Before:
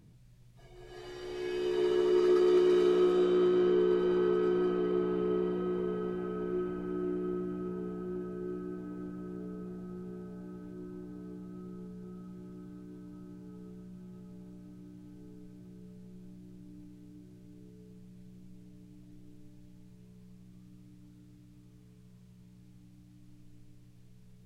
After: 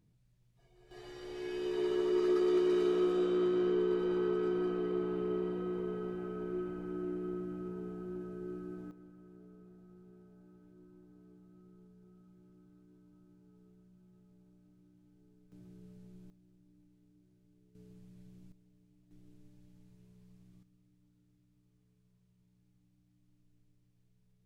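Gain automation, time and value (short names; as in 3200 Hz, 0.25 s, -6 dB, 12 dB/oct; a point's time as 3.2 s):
-12 dB
from 0.91 s -4 dB
from 8.91 s -14.5 dB
from 15.52 s -4 dB
from 16.3 s -15 dB
from 17.75 s -3.5 dB
from 18.52 s -14 dB
from 19.11 s -6 dB
from 20.63 s -15 dB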